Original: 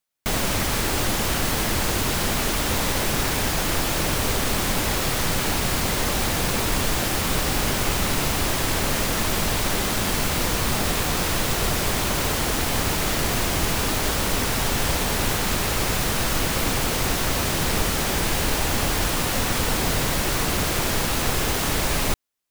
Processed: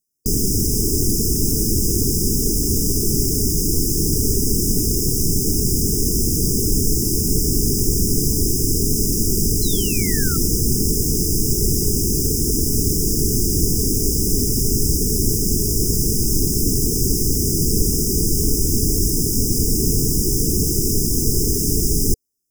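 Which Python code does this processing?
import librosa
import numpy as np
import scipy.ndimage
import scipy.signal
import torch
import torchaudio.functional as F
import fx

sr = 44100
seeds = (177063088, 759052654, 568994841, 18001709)

y = fx.brickwall_bandstop(x, sr, low_hz=460.0, high_hz=4900.0)
y = fx.spec_paint(y, sr, seeds[0], shape='fall', start_s=9.62, length_s=0.75, low_hz=1300.0, high_hz=4200.0, level_db=-40.0)
y = y * 10.0 ** (6.5 / 20.0)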